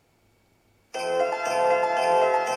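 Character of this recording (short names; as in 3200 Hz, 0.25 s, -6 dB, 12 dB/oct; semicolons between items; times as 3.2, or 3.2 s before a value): noise floor -65 dBFS; spectral tilt -0.5 dB/oct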